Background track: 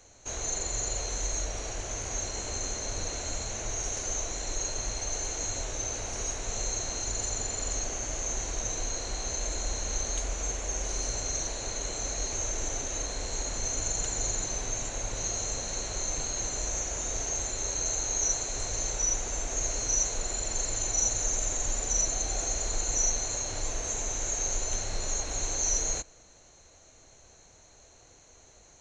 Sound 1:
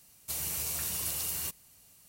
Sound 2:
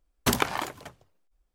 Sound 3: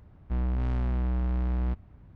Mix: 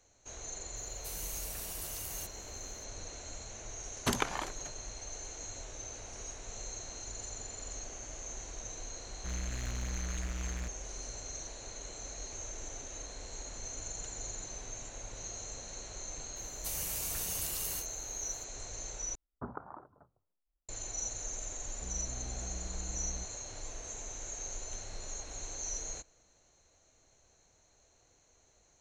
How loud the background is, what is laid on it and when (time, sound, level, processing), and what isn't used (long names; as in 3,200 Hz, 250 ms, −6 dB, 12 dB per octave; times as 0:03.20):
background track −11 dB
0:00.76: mix in 1 −8.5 dB
0:03.80: mix in 2 −7 dB + low-pass filter 10,000 Hz
0:08.94: mix in 3 −11 dB + short delay modulated by noise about 1,700 Hz, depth 0.37 ms
0:16.36: mix in 1 −3.5 dB + every ending faded ahead of time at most 250 dB per second
0:19.15: overwrite with 2 −16 dB + Chebyshev low-pass filter 1,400 Hz, order 5
0:21.51: mix in 3 −16 dB